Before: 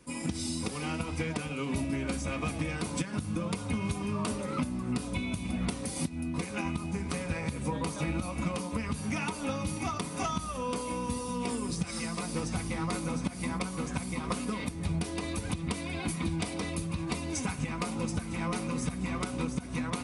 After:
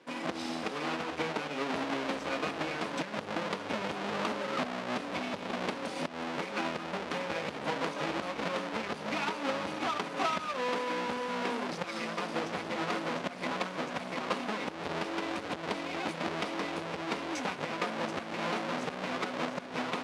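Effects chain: half-waves squared off; BPF 400–3900 Hz

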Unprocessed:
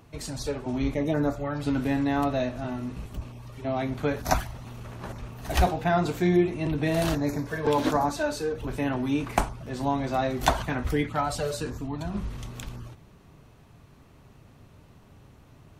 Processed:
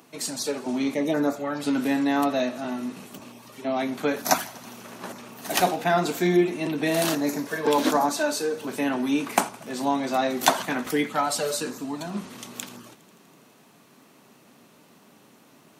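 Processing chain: Chebyshev high-pass 210 Hz, order 3; high shelf 4900 Hz +8.5 dB; on a send: thinning echo 82 ms, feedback 82%, level -23 dB; on the sum: gain +3 dB

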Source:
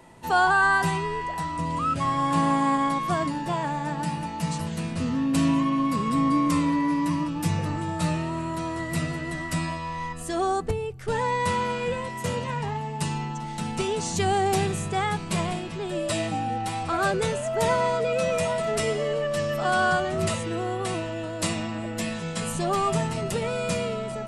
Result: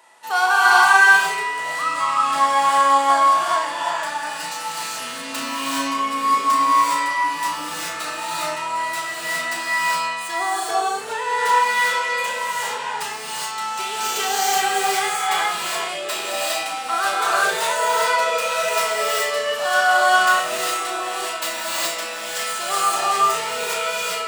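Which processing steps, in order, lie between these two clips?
tracing distortion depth 0.11 ms; HPF 950 Hz 12 dB/oct; bell 2300 Hz -2.5 dB 0.37 oct; on a send: flutter echo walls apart 5.6 m, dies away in 0.28 s; on the sum: non-linear reverb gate 0.44 s rising, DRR -5.5 dB; gain +3.5 dB

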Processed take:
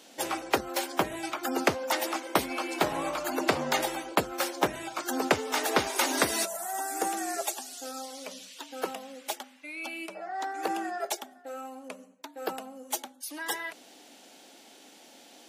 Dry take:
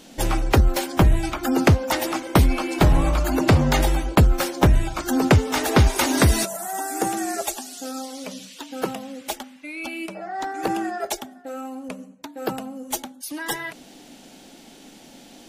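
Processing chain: HPF 400 Hz 12 dB/oct; gain -4.5 dB

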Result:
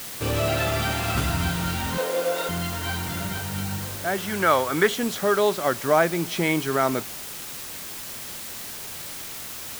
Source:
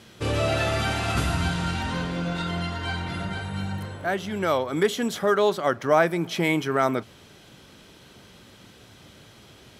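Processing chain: 4.18–4.94 bell 1500 Hz +9 dB 1.4 oct; requantised 6-bit, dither triangular; 1.98–2.49 resonant high-pass 500 Hz, resonance Q 4.9

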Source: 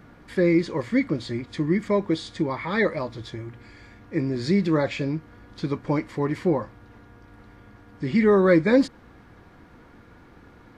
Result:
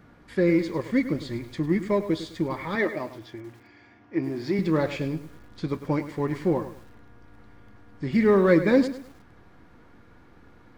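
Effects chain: in parallel at -8 dB: backlash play -21 dBFS; 2.75–4.59 on the sum: speaker cabinet 150–5500 Hz, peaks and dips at 180 Hz -10 dB, 330 Hz +4 dB, 500 Hz -8 dB, 710 Hz +4 dB, 1300 Hz -3 dB, 4000 Hz -8 dB; lo-fi delay 0.103 s, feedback 35%, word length 7-bit, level -12 dB; gain -4 dB

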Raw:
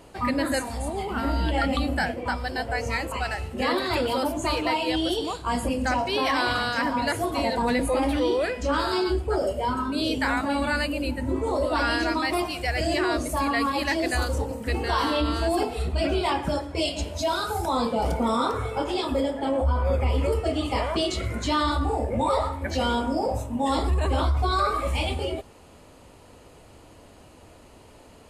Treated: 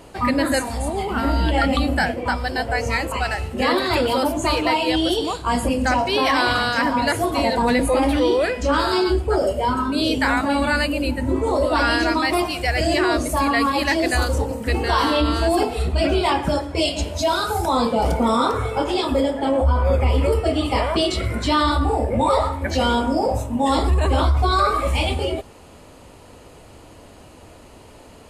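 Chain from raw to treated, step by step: 20.19–22.23 notch 6600 Hz, Q 6.1; gain +5.5 dB

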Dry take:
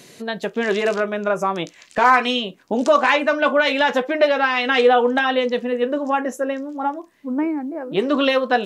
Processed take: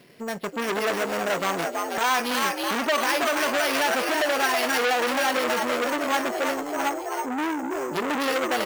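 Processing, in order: G.711 law mismatch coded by A; on a send: frequency-shifting echo 0.325 s, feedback 60%, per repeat +72 Hz, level -6.5 dB; on the sum: limiter -10 dBFS, peak gain reduction 6.5 dB; careless resampling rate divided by 6×, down filtered, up hold; core saturation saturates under 2300 Hz

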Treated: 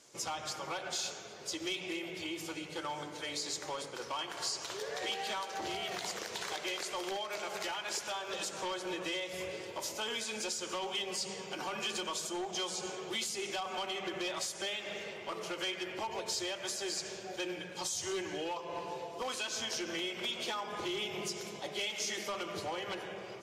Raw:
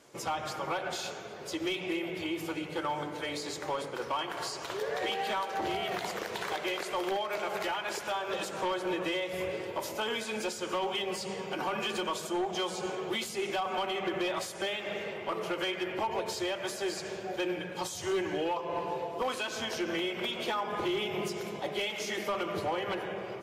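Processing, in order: bell 6200 Hz +12 dB 1.8 oct; gain -7 dB

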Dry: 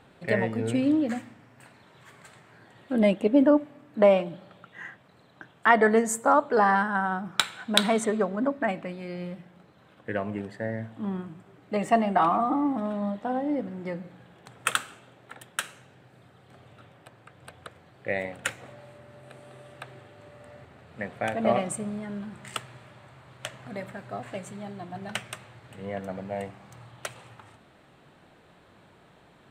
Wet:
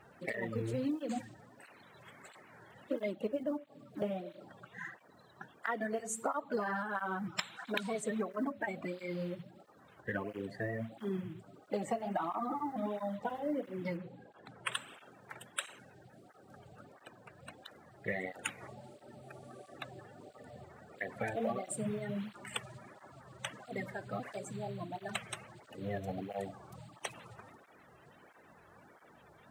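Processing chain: bin magnitudes rounded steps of 30 dB; companded quantiser 8-bit; 13.97–14.72 high shelf 4400 Hz -11 dB; compressor 16:1, threshold -29 dBFS, peak gain reduction 16 dB; tape flanging out of phase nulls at 1.5 Hz, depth 4.4 ms

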